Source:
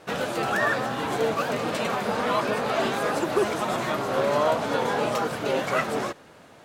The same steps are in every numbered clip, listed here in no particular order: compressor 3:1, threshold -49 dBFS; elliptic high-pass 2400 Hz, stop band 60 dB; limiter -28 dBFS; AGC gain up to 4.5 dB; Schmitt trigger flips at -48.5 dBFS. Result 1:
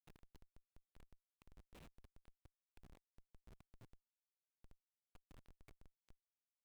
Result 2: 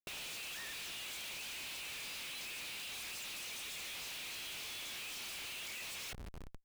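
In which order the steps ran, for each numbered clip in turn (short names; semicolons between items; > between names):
limiter > AGC > compressor > elliptic high-pass > Schmitt trigger; elliptic high-pass > limiter > AGC > Schmitt trigger > compressor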